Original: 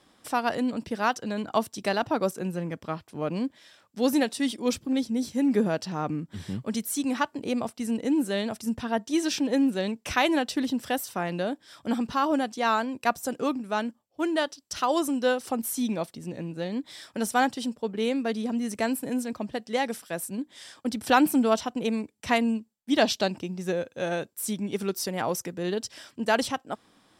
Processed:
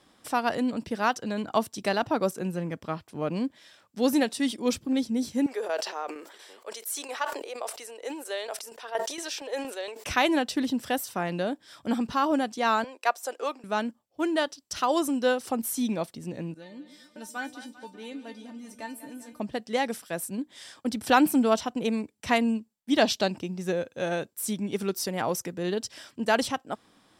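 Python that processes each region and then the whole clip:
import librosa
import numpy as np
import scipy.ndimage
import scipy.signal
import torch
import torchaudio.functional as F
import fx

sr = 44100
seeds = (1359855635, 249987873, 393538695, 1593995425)

y = fx.chain(x, sr, fx.steep_highpass(hz=420.0, slope=36),
    fx.tremolo_shape(shape='saw_down', hz=4.3, depth_pct=65),
    fx.sustainer(db_per_s=64.0), at=(5.46, 10.04))
y = fx.chain(y, sr, fx.highpass(hz=450.0, slope=24),
    fx.high_shelf(hz=11000.0, db=-7.0), at=(12.84, 13.64))
y = fx.chain(y, sr, fx.comb_fb(f0_hz=300.0, decay_s=0.17, harmonics='all', damping=0.0, mix_pct=90),
    fx.echo_split(split_hz=530.0, low_ms=127, high_ms=197, feedback_pct=52, wet_db=-12.5), at=(16.54, 19.4))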